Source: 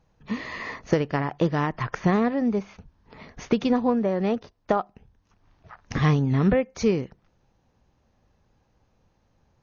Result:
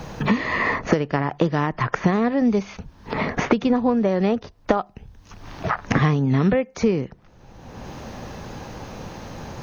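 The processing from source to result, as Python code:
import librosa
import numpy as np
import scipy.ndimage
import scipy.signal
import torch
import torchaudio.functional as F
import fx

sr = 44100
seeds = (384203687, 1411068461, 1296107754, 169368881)

y = fx.band_squash(x, sr, depth_pct=100)
y = y * librosa.db_to_amplitude(3.0)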